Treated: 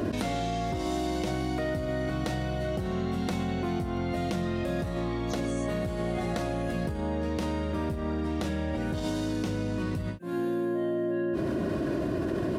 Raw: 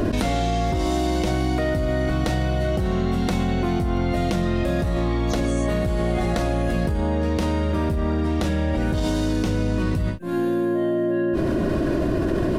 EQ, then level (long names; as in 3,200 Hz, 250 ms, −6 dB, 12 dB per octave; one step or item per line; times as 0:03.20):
high-pass filter 82 Hz 12 dB per octave
−7.0 dB